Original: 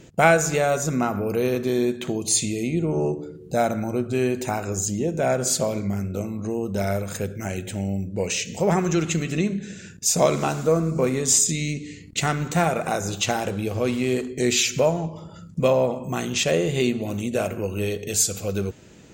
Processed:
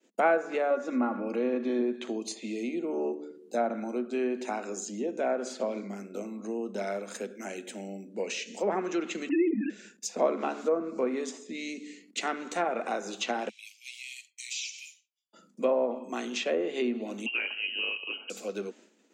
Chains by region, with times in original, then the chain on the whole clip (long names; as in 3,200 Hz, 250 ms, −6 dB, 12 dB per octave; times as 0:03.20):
0:00.70–0:01.81: high-shelf EQ 9,300 Hz −10.5 dB + comb filter 3.6 ms, depth 63%
0:09.29–0:09.70: three sine waves on the formant tracks + comb filter 6.3 ms, depth 96% + envelope flattener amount 50%
0:13.49–0:15.33: Butterworth high-pass 2,200 Hz 72 dB per octave + downward compressor 2 to 1, threshold −30 dBFS + parametric band 5,700 Hz +4.5 dB 0.26 octaves
0:17.26–0:18.30: parametric band 860 Hz +3 dB 0.37 octaves + voice inversion scrambler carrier 3,000 Hz
whole clip: downward expander −40 dBFS; Butterworth high-pass 210 Hz 72 dB per octave; treble cut that deepens with the level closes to 1,500 Hz, closed at −16.5 dBFS; level −6.5 dB